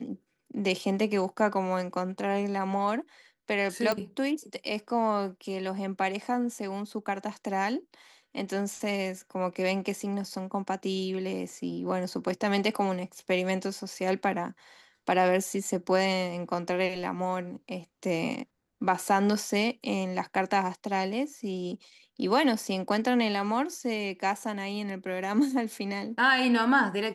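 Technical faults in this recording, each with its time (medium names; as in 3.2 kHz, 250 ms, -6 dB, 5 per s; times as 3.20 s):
3.92 s: pop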